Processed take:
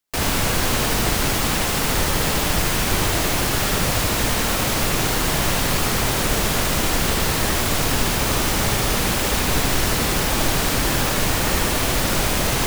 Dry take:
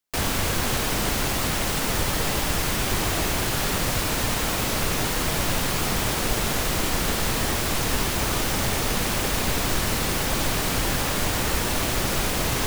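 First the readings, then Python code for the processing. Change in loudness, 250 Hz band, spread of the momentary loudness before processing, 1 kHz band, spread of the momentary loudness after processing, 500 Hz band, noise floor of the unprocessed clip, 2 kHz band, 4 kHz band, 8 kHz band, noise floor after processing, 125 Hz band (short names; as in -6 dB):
+4.0 dB, +4.0 dB, 0 LU, +4.0 dB, 0 LU, +4.0 dB, -26 dBFS, +4.0 dB, +4.0 dB, +4.0 dB, -22 dBFS, +4.0 dB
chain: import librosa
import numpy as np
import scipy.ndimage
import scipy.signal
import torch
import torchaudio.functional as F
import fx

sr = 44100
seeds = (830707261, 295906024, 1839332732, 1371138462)

y = x + 10.0 ** (-3.5 / 20.0) * np.pad(x, (int(77 * sr / 1000.0), 0))[:len(x)]
y = F.gain(torch.from_numpy(y), 2.5).numpy()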